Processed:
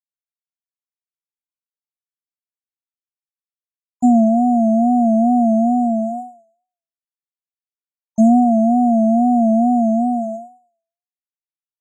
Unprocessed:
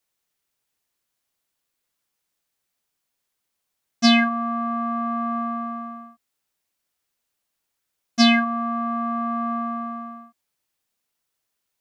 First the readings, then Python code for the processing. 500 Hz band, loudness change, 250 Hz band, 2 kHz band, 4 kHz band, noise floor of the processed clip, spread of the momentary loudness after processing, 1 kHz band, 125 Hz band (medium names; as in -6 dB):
+13.0 dB, +7.5 dB, +10.5 dB, under -40 dB, under -40 dB, under -85 dBFS, 10 LU, +6.5 dB, no reading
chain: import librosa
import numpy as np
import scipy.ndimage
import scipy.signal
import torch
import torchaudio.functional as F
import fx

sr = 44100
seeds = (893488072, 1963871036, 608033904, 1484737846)

p1 = fx.rider(x, sr, range_db=5, speed_s=2.0)
p2 = x + (p1 * 10.0 ** (-2.5 / 20.0))
p3 = np.clip(p2, -10.0 ** (-2.0 / 20.0), 10.0 ** (-2.0 / 20.0))
p4 = fx.peak_eq(p3, sr, hz=4600.0, db=12.5, octaves=1.0)
p5 = np.sign(p4) * np.maximum(np.abs(p4) - 10.0 ** (-34.5 / 20.0), 0.0)
p6 = fx.brickwall_bandstop(p5, sr, low_hz=960.0, high_hz=6600.0)
p7 = fx.air_absorb(p6, sr, metres=110.0)
p8 = fx.echo_thinned(p7, sr, ms=113, feedback_pct=26, hz=450.0, wet_db=-12)
p9 = fx.wow_flutter(p8, sr, seeds[0], rate_hz=2.1, depth_cents=91.0)
p10 = fx.env_flatten(p9, sr, amount_pct=70)
y = p10 * 10.0 ** (-1.5 / 20.0)